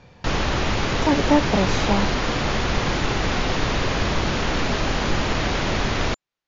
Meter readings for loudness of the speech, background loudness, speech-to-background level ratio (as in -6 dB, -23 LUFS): -23.0 LUFS, -23.0 LUFS, 0.0 dB